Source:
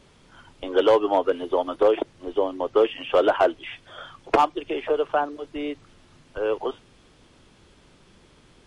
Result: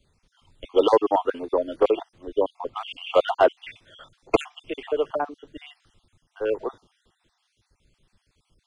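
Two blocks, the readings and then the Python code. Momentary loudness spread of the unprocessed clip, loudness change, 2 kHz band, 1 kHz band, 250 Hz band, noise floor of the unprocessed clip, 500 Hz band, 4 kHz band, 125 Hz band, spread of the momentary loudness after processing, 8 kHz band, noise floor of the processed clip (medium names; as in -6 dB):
18 LU, -1.0 dB, -2.5 dB, -2.5 dB, -2.0 dB, -56 dBFS, -1.0 dB, -1.5 dB, -1.5 dB, 16 LU, no reading, -74 dBFS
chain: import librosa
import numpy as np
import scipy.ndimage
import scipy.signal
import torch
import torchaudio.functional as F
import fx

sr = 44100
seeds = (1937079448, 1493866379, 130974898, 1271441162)

y = fx.spec_dropout(x, sr, seeds[0], share_pct=44)
y = fx.band_widen(y, sr, depth_pct=40)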